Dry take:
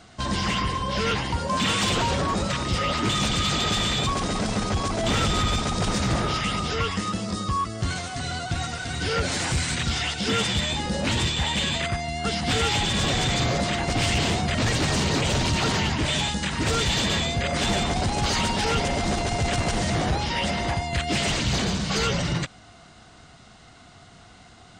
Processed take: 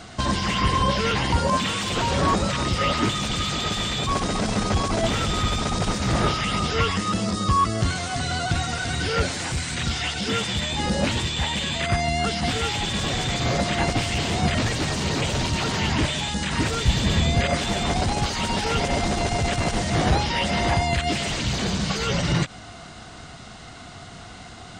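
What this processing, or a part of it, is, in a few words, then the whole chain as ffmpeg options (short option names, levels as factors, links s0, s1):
de-esser from a sidechain: -filter_complex "[0:a]asettb=1/sr,asplit=3[s0][s1][s2];[s0]atrim=end=16.854[s3];[s1]atrim=start=16.85:end=17.35,asetpts=PTS-STARTPTS,afade=t=in:d=0.004:c=qsin,afade=t=out:st=0.496:d=0.004:c=qsin,lowshelf=f=210:g=12[s4];[s2]atrim=start=17.346[s5];[s3][s4]acrossfade=d=0.004:c1=hsin:c2=qsin[s6];[s6][s5]acrossfade=d=0.004:c1=qsin:c2=hsin,asplit=2[s7][s8];[s8]highpass=5600,apad=whole_len=1093574[s9];[s7][s9]sidechaincompress=threshold=0.00794:ratio=4:attack=1.2:release=90,volume=2.66"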